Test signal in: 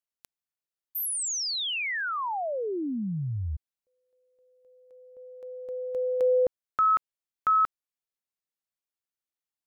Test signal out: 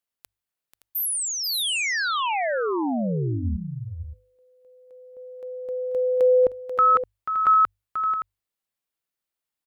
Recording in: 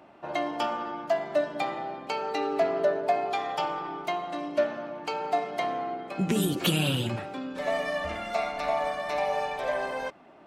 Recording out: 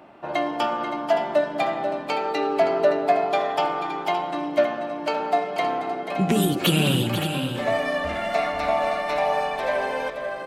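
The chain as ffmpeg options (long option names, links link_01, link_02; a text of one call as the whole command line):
ffmpeg -i in.wav -filter_complex "[0:a]equalizer=frequency=6100:width_type=o:width=0.77:gain=-3.5,bandreject=frequency=50:width_type=h:width=6,bandreject=frequency=100:width_type=h:width=6,asplit=2[link_01][link_02];[link_02]aecho=0:1:487|569:0.355|0.299[link_03];[link_01][link_03]amix=inputs=2:normalize=0,volume=5dB" out.wav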